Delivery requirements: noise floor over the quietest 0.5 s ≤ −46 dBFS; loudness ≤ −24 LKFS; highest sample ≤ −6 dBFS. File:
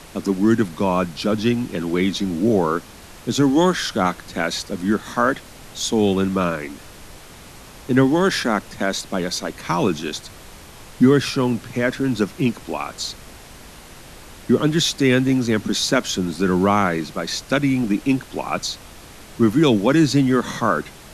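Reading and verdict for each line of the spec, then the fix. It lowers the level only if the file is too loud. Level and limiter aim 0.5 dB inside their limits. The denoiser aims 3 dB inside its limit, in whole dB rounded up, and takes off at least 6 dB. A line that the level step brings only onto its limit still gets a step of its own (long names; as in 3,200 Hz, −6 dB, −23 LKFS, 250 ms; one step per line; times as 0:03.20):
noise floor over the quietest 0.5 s −41 dBFS: out of spec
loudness −20.5 LKFS: out of spec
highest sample −4.0 dBFS: out of spec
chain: broadband denoise 6 dB, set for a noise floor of −41 dBFS
level −4 dB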